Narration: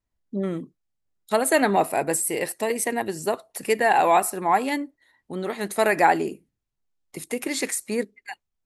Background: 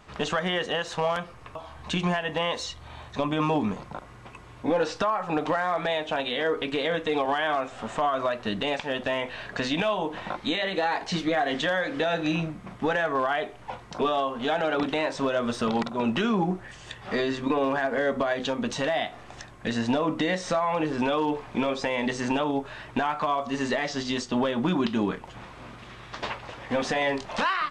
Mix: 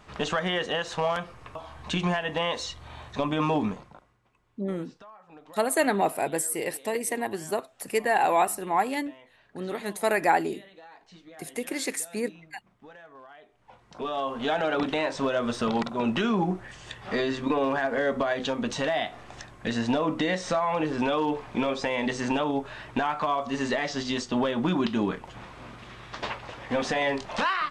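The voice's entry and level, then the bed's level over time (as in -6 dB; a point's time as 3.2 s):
4.25 s, -4.0 dB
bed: 3.66 s -0.5 dB
4.21 s -23.5 dB
13.43 s -23.5 dB
14.32 s -0.5 dB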